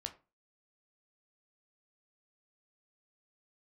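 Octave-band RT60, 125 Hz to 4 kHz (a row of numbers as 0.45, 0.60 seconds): 0.35, 0.35, 0.30, 0.30, 0.25, 0.20 seconds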